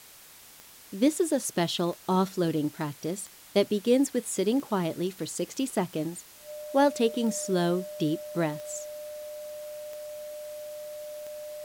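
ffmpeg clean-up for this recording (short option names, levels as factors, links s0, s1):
-af "adeclick=t=4,bandreject=f=600:w=30,afftdn=nr=22:nf=-51"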